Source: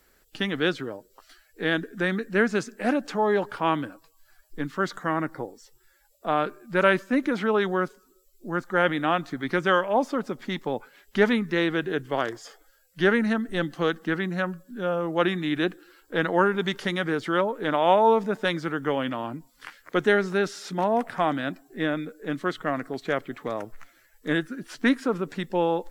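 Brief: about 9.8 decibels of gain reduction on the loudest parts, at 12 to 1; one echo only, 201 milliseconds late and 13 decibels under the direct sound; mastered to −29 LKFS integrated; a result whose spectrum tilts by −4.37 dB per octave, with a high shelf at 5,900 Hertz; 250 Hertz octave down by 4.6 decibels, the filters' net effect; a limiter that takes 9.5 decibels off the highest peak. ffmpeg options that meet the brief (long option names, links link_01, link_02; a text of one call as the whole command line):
ffmpeg -i in.wav -af "equalizer=frequency=250:width_type=o:gain=-6.5,highshelf=frequency=5900:gain=8.5,acompressor=threshold=-25dB:ratio=12,alimiter=limit=-23dB:level=0:latency=1,aecho=1:1:201:0.224,volume=6.5dB" out.wav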